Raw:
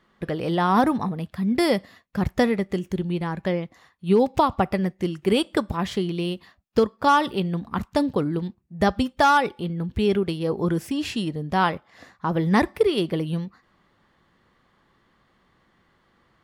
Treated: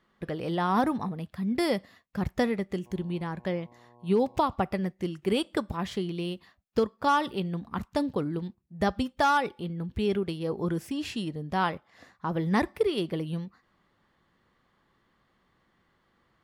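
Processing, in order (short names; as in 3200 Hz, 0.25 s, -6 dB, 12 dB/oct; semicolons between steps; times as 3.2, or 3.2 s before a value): 2.85–4.51 buzz 120 Hz, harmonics 9, -51 dBFS -1 dB/oct; gain -6 dB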